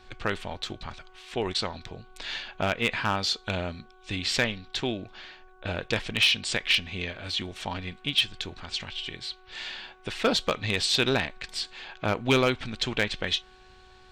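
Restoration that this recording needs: clip repair -14.5 dBFS; de-hum 371.8 Hz, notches 4

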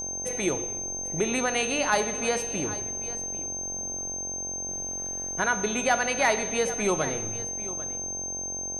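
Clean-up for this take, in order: de-hum 45.4 Hz, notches 19; notch 6300 Hz, Q 30; inverse comb 0.793 s -15.5 dB

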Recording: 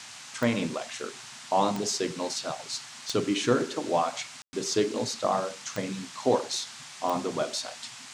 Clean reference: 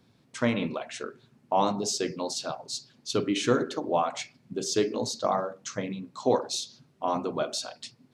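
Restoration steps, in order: de-click; room tone fill 4.42–4.53; noise print and reduce 17 dB

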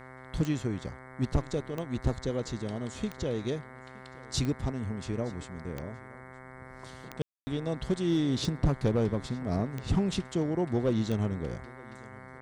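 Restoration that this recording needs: de-click; de-hum 129.4 Hz, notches 17; room tone fill 7.22–7.47; inverse comb 0.919 s -23 dB

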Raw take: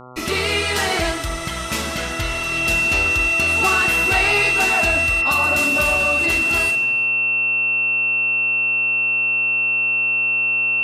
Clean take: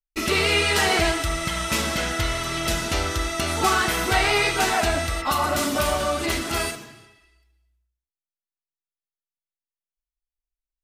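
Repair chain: clip repair -9 dBFS; de-hum 125.7 Hz, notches 11; notch 2700 Hz, Q 30

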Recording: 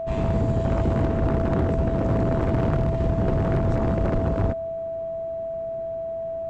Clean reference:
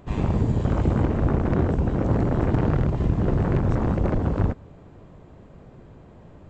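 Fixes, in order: clip repair -16.5 dBFS; notch 660 Hz, Q 30

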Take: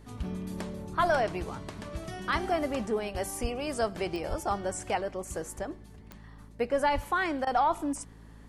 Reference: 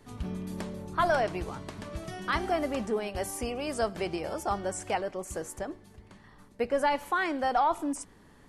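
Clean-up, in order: de-click; de-hum 54.3 Hz, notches 5; 3.41–3.53 HPF 140 Hz 24 dB/oct; 4.29–4.41 HPF 140 Hz 24 dB/oct; 6.94–7.06 HPF 140 Hz 24 dB/oct; interpolate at 7.45, 17 ms

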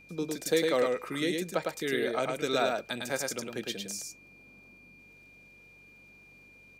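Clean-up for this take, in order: de-click; de-hum 48 Hz, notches 4; notch 2400 Hz, Q 30; inverse comb 0.106 s -3.5 dB

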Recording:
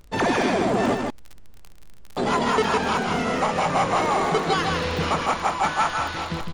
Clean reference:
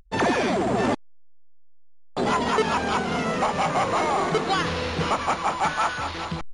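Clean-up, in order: de-click; expander -31 dBFS, range -21 dB; inverse comb 0.156 s -4.5 dB

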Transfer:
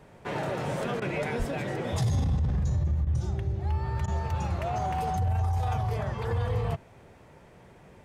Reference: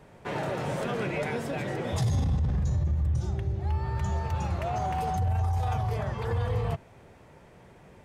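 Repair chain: 1.38–1.5 HPF 140 Hz 24 dB/oct; interpolate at 1/3.05/4.06, 16 ms

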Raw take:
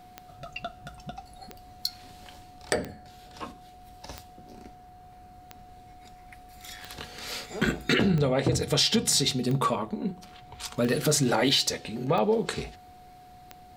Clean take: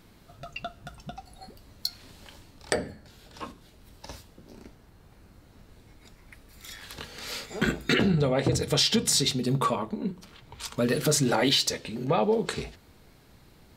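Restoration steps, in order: clip repair -10.5 dBFS; de-click; notch 730 Hz, Q 30

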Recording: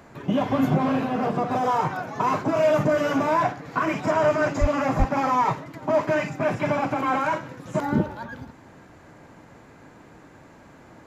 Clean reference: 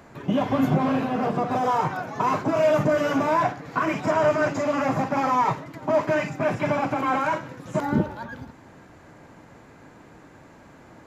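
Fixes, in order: de-plosive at 4.6/4.98

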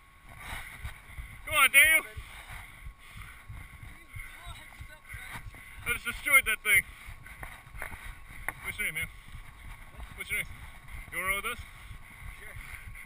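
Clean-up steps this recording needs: notch 1100 Hz, Q 30

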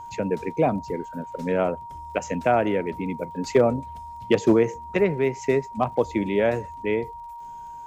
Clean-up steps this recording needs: clip repair -9 dBFS; de-click; notch 940 Hz, Q 30

